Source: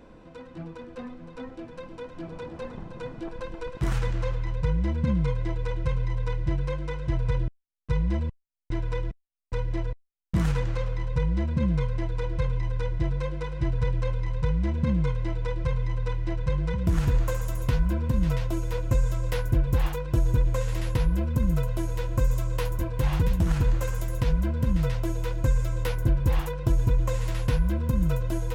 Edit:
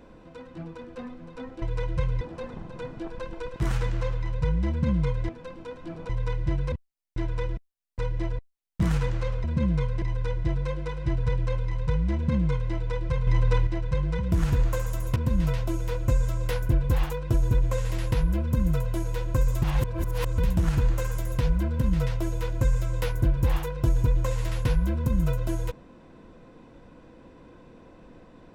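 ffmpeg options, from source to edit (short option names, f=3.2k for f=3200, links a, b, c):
-filter_complex "[0:a]asplit=13[a][b][c][d][e][f][g][h][i][j][k][l][m];[a]atrim=end=1.622[n];[b]atrim=start=5.498:end=6.092[o];[c]atrim=start=2.418:end=5.502[p];[d]atrim=start=1.618:end=2.422[q];[e]atrim=start=6.088:end=6.722[r];[f]atrim=start=8.258:end=10.982[s];[g]atrim=start=11.438:end=12.022[t];[h]atrim=start=12.568:end=15.822[u];[i]atrim=start=15.818:end=16.222,asetpts=PTS-STARTPTS,volume=6.5dB[v];[j]atrim=start=16.218:end=17.712[w];[k]atrim=start=17.988:end=22.452[x];[l]atrim=start=22.448:end=23.212,asetpts=PTS-STARTPTS,areverse[y];[m]atrim=start=23.208[z];[n][o]acrossfade=d=0.004:c1=hsin:c2=hsin[aa];[aa][p]acrossfade=d=0.004:c1=hsin:c2=hsin[ab];[ab][q]acrossfade=d=0.004:c1=hsin:c2=hsin[ac];[ac][r]acrossfade=d=0.004:c1=hsin:c2=hsin[ad];[ad][s]acrossfade=d=0.004:c1=hsin:c2=hsin[ae];[ae][t]acrossfade=d=0.004:c1=hsin:c2=hsin[af];[af][u]acrossfade=d=0.004:c1=hsin:c2=hsin[ag];[ag][v]acrossfade=d=0.004:c1=hsin:c2=hsin[ah];[ah][w]acrossfade=d=0.004:c1=hsin:c2=hsin[ai];[ai][x]acrossfade=d=0.004:c1=hsin:c2=hsin[aj];[aj][y]acrossfade=d=0.004:c1=hsin:c2=hsin[ak];[ak][z]acrossfade=d=0.004:c1=hsin:c2=hsin"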